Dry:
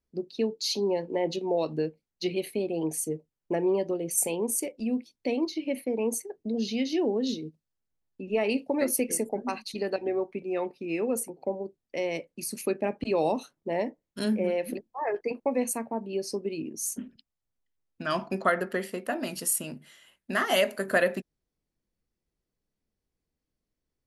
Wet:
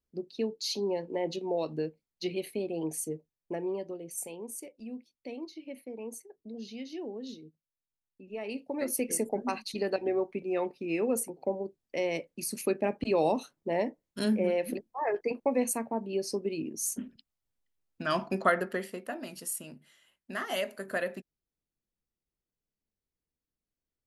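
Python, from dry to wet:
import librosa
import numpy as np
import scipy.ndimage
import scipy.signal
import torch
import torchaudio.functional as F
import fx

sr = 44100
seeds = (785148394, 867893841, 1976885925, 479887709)

y = fx.gain(x, sr, db=fx.line((3.07, -4.0), (4.32, -12.5), (8.33, -12.5), (9.26, -0.5), (18.5, -0.5), (19.27, -8.5)))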